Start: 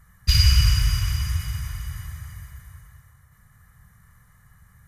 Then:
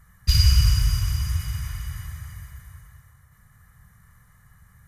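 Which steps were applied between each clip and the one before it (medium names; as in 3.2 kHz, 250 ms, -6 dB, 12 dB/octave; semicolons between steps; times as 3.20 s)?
dynamic bell 2.3 kHz, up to -6 dB, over -42 dBFS, Q 0.78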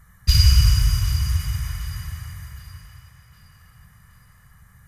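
tape echo 764 ms, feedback 56%, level -14.5 dB, low-pass 5.3 kHz; trim +2.5 dB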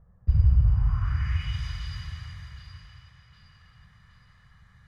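low-pass sweep 570 Hz -> 3.9 kHz, 0.63–1.63 s; trim -5 dB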